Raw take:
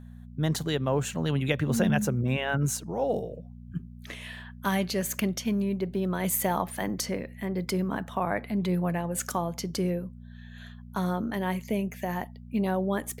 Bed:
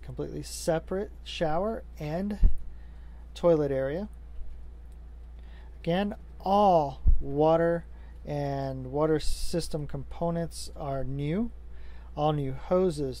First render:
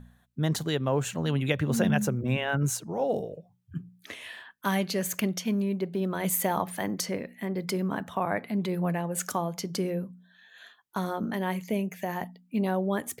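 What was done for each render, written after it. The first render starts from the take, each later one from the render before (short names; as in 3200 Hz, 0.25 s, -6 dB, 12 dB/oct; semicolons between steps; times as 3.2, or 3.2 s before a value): de-hum 60 Hz, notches 4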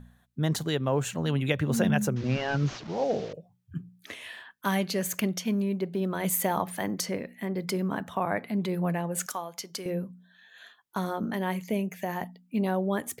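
2.16–3.33 delta modulation 32 kbps, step -38.5 dBFS; 9.26–9.86 HPF 1100 Hz 6 dB/oct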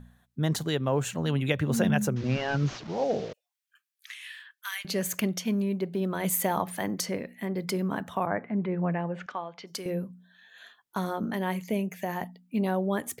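3.33–4.85 HPF 1500 Hz 24 dB/oct; 8.25–9.66 LPF 1800 Hz -> 3800 Hz 24 dB/oct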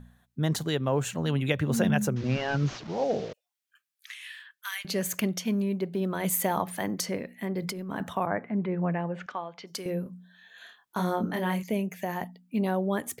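7.62–8.13 negative-ratio compressor -34 dBFS; 10.03–11.63 doubler 28 ms -3.5 dB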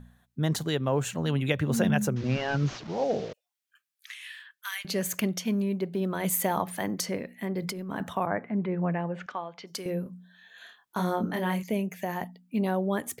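nothing audible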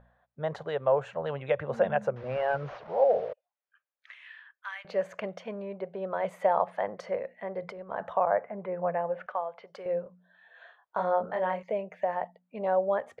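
LPF 1600 Hz 12 dB/oct; resonant low shelf 400 Hz -11 dB, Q 3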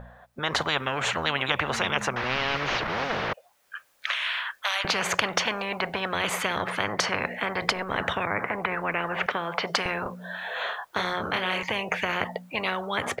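AGC gain up to 13.5 dB; spectral compressor 10:1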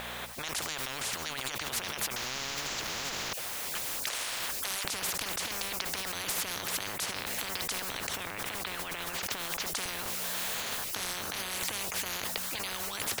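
negative-ratio compressor -33 dBFS, ratio -1; spectral compressor 10:1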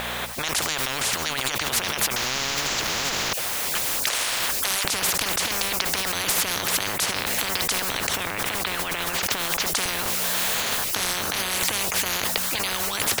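gain +10 dB; limiter -2 dBFS, peak gain reduction 1 dB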